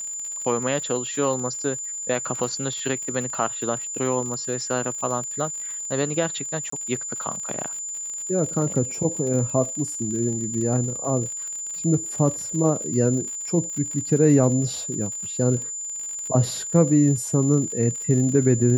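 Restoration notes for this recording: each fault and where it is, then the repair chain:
crackle 57/s -31 dBFS
tone 7100 Hz -29 dBFS
6.7–6.72 gap 24 ms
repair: de-click; notch 7100 Hz, Q 30; interpolate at 6.7, 24 ms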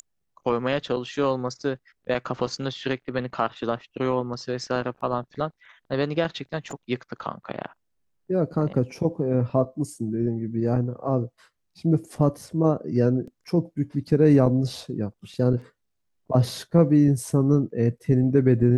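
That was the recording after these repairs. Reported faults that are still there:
none

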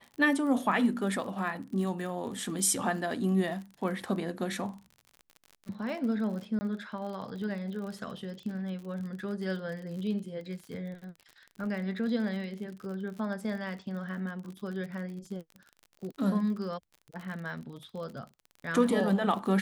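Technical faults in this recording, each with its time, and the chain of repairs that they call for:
crackle 43/s -39 dBFS
6.59–6.61 gap 20 ms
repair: de-click; interpolate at 6.59, 20 ms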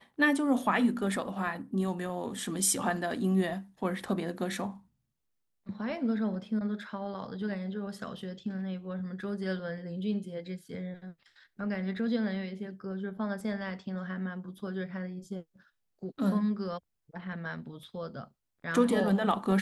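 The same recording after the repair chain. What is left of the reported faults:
none

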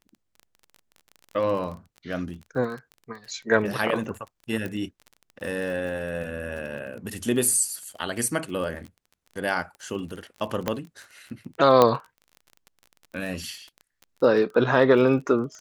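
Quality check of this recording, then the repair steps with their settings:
crackle 26/s -34 dBFS
4.66 pop -19 dBFS
10.68 pop -10 dBFS
11.82 pop -5 dBFS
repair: de-click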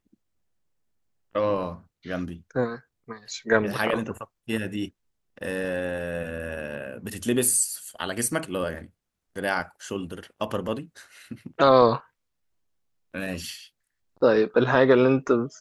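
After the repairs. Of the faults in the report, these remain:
none

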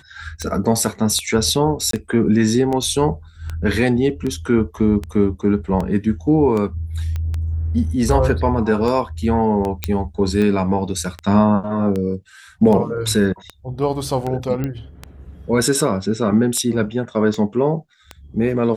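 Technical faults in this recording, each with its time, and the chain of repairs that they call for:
tick 78 rpm -13 dBFS
1.91–1.93 gap 23 ms
7.16 pop -14 dBFS
9.84 pop -4 dBFS
14.64 pop -12 dBFS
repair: de-click; interpolate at 1.91, 23 ms

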